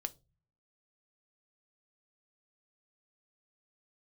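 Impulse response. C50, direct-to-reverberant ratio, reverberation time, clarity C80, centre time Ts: 23.0 dB, 9.0 dB, 0.30 s, 30.5 dB, 3 ms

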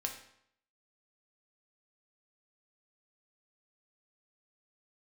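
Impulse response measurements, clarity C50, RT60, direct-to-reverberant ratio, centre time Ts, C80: 8.0 dB, 0.70 s, 2.0 dB, 21 ms, 11.0 dB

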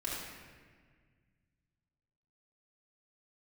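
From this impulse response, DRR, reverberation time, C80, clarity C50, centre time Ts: −7.5 dB, 1.7 s, 1.0 dB, −1.5 dB, 100 ms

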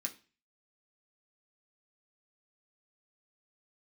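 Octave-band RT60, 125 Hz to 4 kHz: 0.50, 0.40, 0.35, 0.35, 0.40, 0.35 seconds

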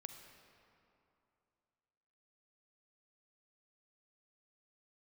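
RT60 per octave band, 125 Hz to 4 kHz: 2.9, 2.8, 2.8, 2.8, 2.3, 1.7 seconds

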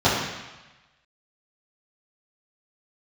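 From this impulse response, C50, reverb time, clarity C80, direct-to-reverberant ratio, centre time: 1.0 dB, 1.1 s, 3.5 dB, −12.0 dB, 68 ms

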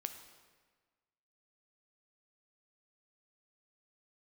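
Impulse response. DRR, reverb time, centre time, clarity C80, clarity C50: 7.0 dB, 1.5 s, 20 ms, 10.0 dB, 9.0 dB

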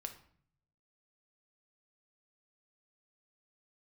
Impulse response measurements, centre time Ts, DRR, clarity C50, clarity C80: 11 ms, 5.0 dB, 11.0 dB, 15.0 dB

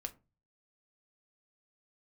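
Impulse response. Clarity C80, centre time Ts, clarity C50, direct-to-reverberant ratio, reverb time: 26.0 dB, 5 ms, 19.5 dB, 5.5 dB, 0.30 s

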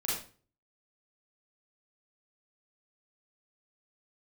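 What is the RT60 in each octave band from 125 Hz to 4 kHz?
0.60, 0.45, 0.40, 0.35, 0.35, 0.35 seconds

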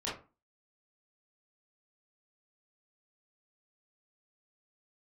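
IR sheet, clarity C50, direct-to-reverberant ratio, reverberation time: 5.5 dB, −8.5 dB, 0.35 s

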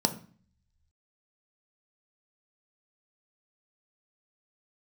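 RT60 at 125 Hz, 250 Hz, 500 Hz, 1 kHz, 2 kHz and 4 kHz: 1.1, 0.70, 0.40, 0.45, 0.45, 0.45 seconds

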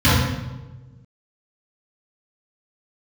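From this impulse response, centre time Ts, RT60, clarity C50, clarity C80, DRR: 84 ms, 1.2 s, −2.0 dB, 2.0 dB, −14.0 dB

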